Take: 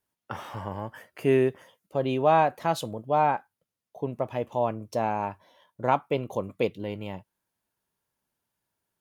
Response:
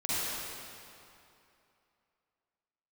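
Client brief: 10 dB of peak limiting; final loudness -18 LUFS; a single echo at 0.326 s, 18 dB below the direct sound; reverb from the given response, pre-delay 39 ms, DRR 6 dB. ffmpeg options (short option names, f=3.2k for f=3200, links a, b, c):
-filter_complex "[0:a]alimiter=limit=-18.5dB:level=0:latency=1,aecho=1:1:326:0.126,asplit=2[a][b];[1:a]atrim=start_sample=2205,adelay=39[c];[b][c]afir=irnorm=-1:irlink=0,volume=-15dB[d];[a][d]amix=inputs=2:normalize=0,volume=14dB"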